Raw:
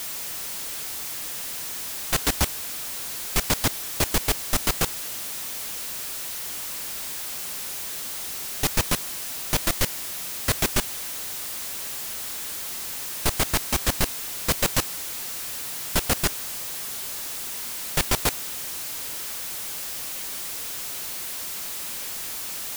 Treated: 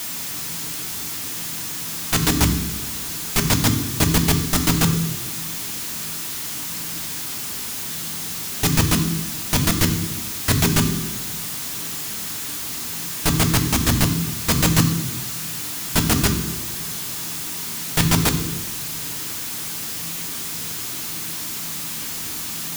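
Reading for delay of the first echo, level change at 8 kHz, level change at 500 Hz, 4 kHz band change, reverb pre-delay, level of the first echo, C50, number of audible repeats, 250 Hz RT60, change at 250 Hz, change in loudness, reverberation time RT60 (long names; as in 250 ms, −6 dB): no echo audible, +4.0 dB, +3.5 dB, +4.5 dB, 3 ms, no echo audible, 9.5 dB, no echo audible, 1.3 s, +12.5 dB, +5.0 dB, 1.1 s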